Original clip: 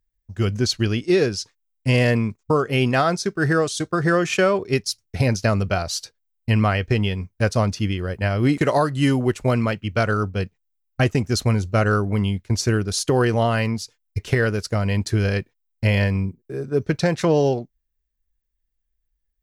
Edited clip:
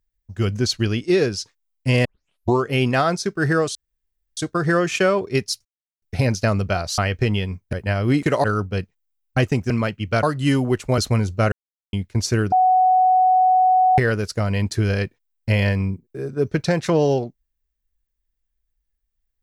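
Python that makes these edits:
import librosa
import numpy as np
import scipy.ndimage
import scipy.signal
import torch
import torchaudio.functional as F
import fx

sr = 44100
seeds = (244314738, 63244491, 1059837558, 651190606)

y = fx.edit(x, sr, fx.tape_start(start_s=2.05, length_s=0.59),
    fx.insert_room_tone(at_s=3.75, length_s=0.62),
    fx.insert_silence(at_s=5.03, length_s=0.37),
    fx.cut(start_s=5.99, length_s=0.68),
    fx.cut(start_s=7.42, length_s=0.66),
    fx.swap(start_s=8.79, length_s=0.75, other_s=10.07, other_length_s=1.26),
    fx.silence(start_s=11.87, length_s=0.41),
    fx.bleep(start_s=12.87, length_s=1.46, hz=743.0, db=-12.0), tone=tone)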